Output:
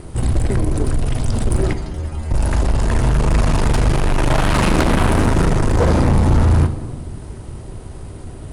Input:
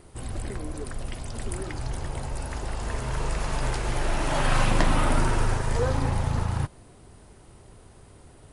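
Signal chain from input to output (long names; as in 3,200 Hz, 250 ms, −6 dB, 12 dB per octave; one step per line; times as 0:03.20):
low-shelf EQ 360 Hz +9 dB
sine wavefolder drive 12 dB, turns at −2 dBFS
tube saturation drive 6 dB, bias 0.5
0:01.73–0:02.31: stiff-string resonator 75 Hz, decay 0.35 s, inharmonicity 0.002
on a send: convolution reverb RT60 1.4 s, pre-delay 3 ms, DRR 9 dB
on the sum: level −3.5 dB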